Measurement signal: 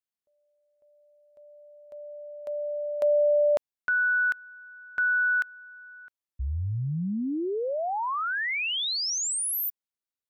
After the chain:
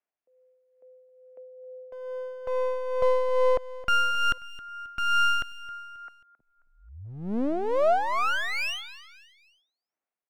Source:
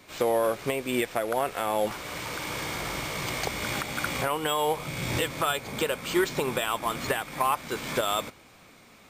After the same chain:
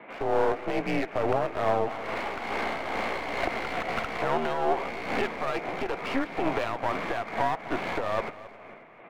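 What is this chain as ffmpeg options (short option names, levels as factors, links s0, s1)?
-af "aemphasis=mode=reproduction:type=50kf,highpass=f=300:t=q:w=0.5412,highpass=f=300:t=q:w=1.307,lowpass=f=2700:t=q:w=0.5176,lowpass=f=2700:t=q:w=0.7071,lowpass=f=2700:t=q:w=1.932,afreqshift=-79,alimiter=limit=0.075:level=0:latency=1:release=78,aeval=exprs='clip(val(0),-1,0.00668)':c=same,tremolo=f=2.3:d=0.48,equalizer=f=690:w=3.2:g=7.5,aecho=1:1:268|536|804:0.141|0.0579|0.0237,volume=2.51"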